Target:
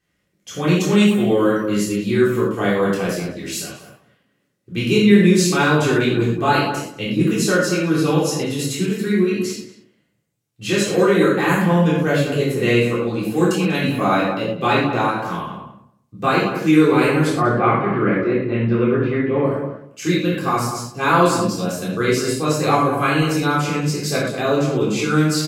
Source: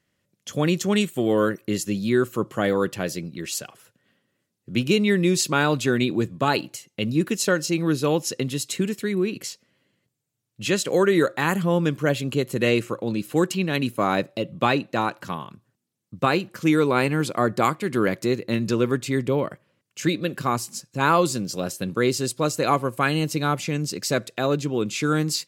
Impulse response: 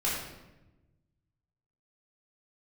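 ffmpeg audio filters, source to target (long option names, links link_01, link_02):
-filter_complex "[0:a]asplit=3[link_01][link_02][link_03];[link_01]afade=type=out:start_time=17.37:duration=0.02[link_04];[link_02]lowpass=frequency=2600:width=0.5412,lowpass=frequency=2600:width=1.3066,afade=type=in:start_time=17.37:duration=0.02,afade=type=out:start_time=19.43:duration=0.02[link_05];[link_03]afade=type=in:start_time=19.43:duration=0.02[link_06];[link_04][link_05][link_06]amix=inputs=3:normalize=0,asplit=2[link_07][link_08];[link_08]adelay=192,lowpass=frequency=1300:poles=1,volume=-6.5dB,asplit=2[link_09][link_10];[link_10]adelay=192,lowpass=frequency=1300:poles=1,volume=0.17,asplit=2[link_11][link_12];[link_12]adelay=192,lowpass=frequency=1300:poles=1,volume=0.17[link_13];[link_07][link_09][link_11][link_13]amix=inputs=4:normalize=0[link_14];[1:a]atrim=start_sample=2205,atrim=end_sample=6174[link_15];[link_14][link_15]afir=irnorm=-1:irlink=0,volume=-3.5dB"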